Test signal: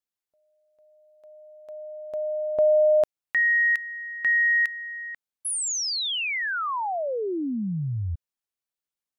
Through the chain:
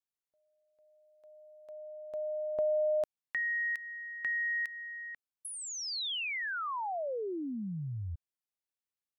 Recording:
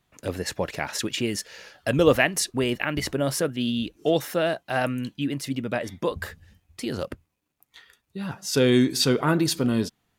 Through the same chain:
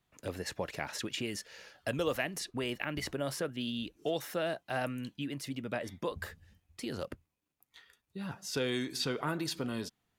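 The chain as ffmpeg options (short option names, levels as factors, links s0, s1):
-filter_complex "[0:a]acrossover=split=560|4500[s0][s1][s2];[s0]acompressor=threshold=0.0398:ratio=4[s3];[s1]acompressor=threshold=0.0562:ratio=4[s4];[s2]acompressor=threshold=0.0178:ratio=4[s5];[s3][s4][s5]amix=inputs=3:normalize=0,volume=0.422"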